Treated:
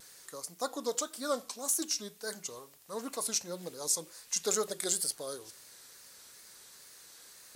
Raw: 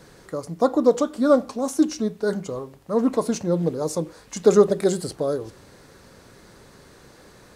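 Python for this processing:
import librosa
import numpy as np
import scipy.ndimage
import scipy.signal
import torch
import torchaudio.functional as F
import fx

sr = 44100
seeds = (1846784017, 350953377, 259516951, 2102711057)

y = F.preemphasis(torch.from_numpy(x), 0.97).numpy()
y = fx.wow_flutter(y, sr, seeds[0], rate_hz=2.1, depth_cents=82.0)
y = y * librosa.db_to_amplitude(5.0)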